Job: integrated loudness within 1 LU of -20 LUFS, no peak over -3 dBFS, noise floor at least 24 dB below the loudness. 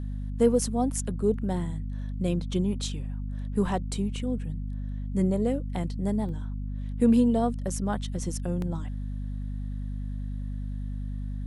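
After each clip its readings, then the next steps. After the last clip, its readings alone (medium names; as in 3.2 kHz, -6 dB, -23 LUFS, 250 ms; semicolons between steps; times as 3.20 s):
dropouts 2; longest dropout 1.9 ms; hum 50 Hz; highest harmonic 250 Hz; hum level -30 dBFS; loudness -29.5 LUFS; peak level -10.0 dBFS; loudness target -20.0 LUFS
-> interpolate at 6.29/8.62 s, 1.9 ms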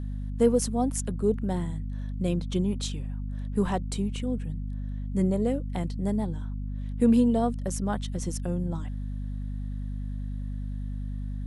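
dropouts 0; hum 50 Hz; highest harmonic 250 Hz; hum level -30 dBFS
-> de-hum 50 Hz, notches 5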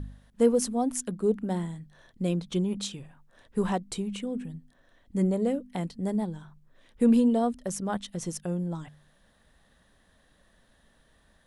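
hum not found; loudness -29.0 LUFS; peak level -11.0 dBFS; loudness target -20.0 LUFS
-> trim +9 dB; peak limiter -3 dBFS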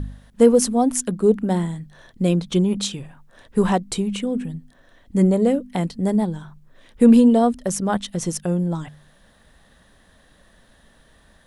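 loudness -20.0 LUFS; peak level -3.0 dBFS; noise floor -55 dBFS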